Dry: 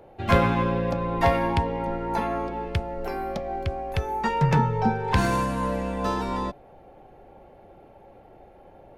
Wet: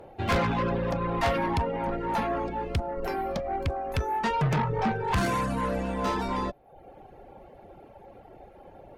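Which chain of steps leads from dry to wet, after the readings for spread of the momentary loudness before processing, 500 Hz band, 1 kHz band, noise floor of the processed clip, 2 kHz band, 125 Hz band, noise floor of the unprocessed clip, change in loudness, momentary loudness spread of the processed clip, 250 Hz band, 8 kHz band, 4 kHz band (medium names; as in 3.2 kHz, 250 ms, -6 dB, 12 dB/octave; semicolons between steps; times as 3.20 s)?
9 LU, -2.5 dB, -2.5 dB, -52 dBFS, -2.0 dB, -4.0 dB, -51 dBFS, -3.0 dB, 5 LU, -3.5 dB, -1.0 dB, -1.0 dB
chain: valve stage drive 24 dB, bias 0.3; reverb removal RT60 0.69 s; trim +3.5 dB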